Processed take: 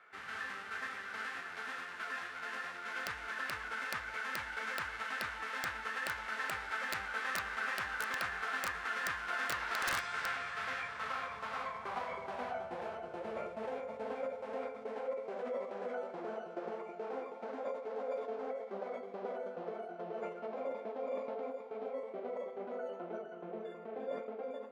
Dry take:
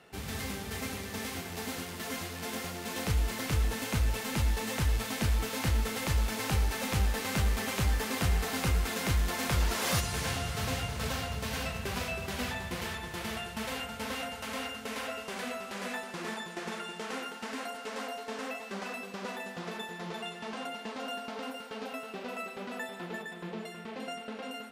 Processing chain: band-pass sweep 1.8 kHz -> 650 Hz, 10.82–13.21 s; formant shift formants -3 st; integer overflow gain 30 dB; trim +4.5 dB

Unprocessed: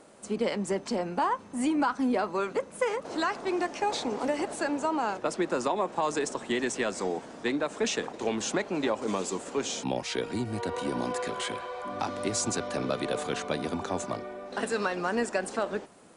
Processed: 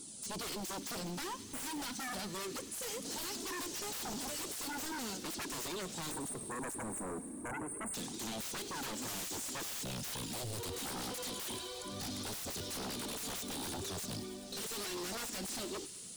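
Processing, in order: pre-emphasis filter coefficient 0.8; spectral selection erased 6.11–7.95 s, 1.3–8.3 kHz; high-order bell 1.1 kHz -16 dB 2.6 oct; peak limiter -34 dBFS, peak gain reduction 11.5 dB; flange 0.49 Hz, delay 0.8 ms, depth 3.4 ms, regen -25%; sine folder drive 18 dB, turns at -35 dBFS; feedback echo behind a high-pass 100 ms, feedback 80%, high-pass 2 kHz, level -13.5 dB; trim -2.5 dB

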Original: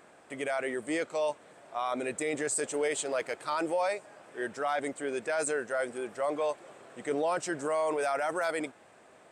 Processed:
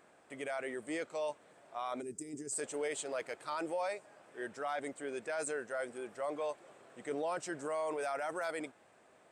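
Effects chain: time-frequency box 2.02–2.52 s, 440–4600 Hz -19 dB; trim -7 dB

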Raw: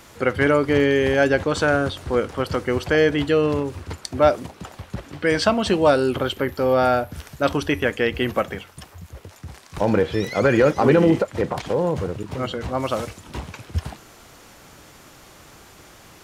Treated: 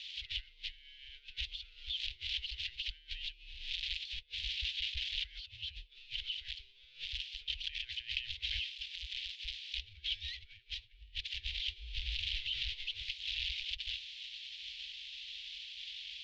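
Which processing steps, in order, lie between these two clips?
zero-crossing glitches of -13 dBFS; compressor with a negative ratio -25 dBFS, ratio -0.5; mistuned SSB -120 Hz 210–3500 Hz; inverse Chebyshev band-stop 140–1300 Hz, stop band 50 dB; trim +1 dB

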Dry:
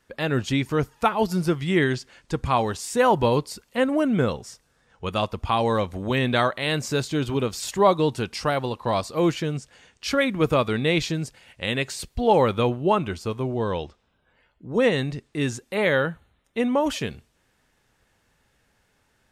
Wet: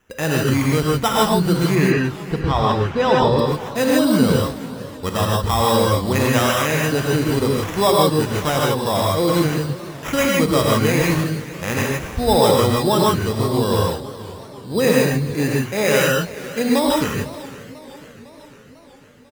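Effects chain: tone controls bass +1 dB, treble -7 dB; in parallel at +0.5 dB: peak limiter -18 dBFS, peak gain reduction 12 dB; on the sum: sample-and-hold 10×; 1.75–3.39 s: distance through air 190 m; delay 428 ms -19.5 dB; gated-style reverb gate 180 ms rising, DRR -2.5 dB; modulated delay 499 ms, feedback 63%, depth 195 cents, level -18.5 dB; trim -2.5 dB

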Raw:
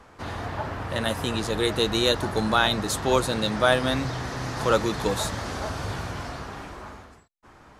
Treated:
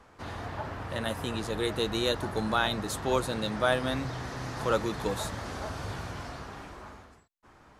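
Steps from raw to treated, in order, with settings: dynamic bell 5.4 kHz, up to -3 dB, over -40 dBFS, Q 0.74; trim -5.5 dB

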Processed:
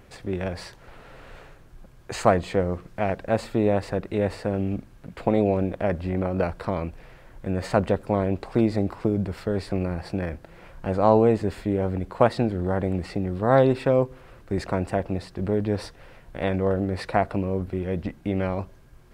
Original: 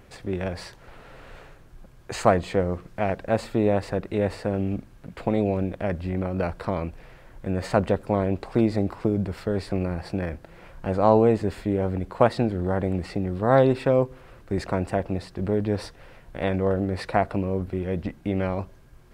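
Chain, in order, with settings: 5.26–6.44 s: peaking EQ 670 Hz +3.5 dB 2.5 oct

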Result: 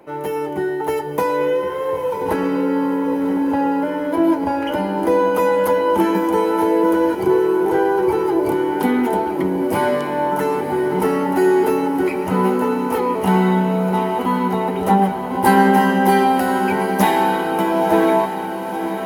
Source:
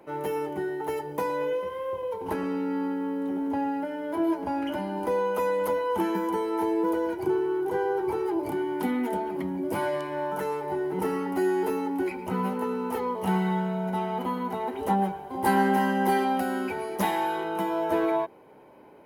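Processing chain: level rider gain up to 4 dB; echo that smears into a reverb 1003 ms, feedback 63%, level -9 dB; trim +5.5 dB

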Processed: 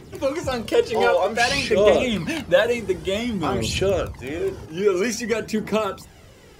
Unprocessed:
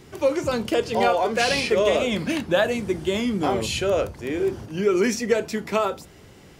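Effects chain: phaser 0.53 Hz, delay 2.5 ms, feedback 49%

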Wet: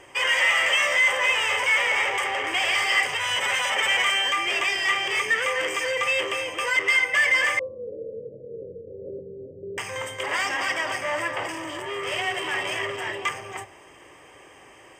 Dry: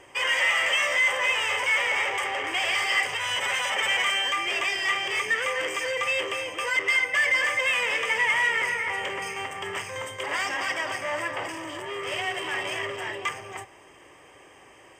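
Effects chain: 7.59–9.78 s: steep low-pass 560 Hz 96 dB/octave; de-hum 95.45 Hz, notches 12; trim +2.5 dB

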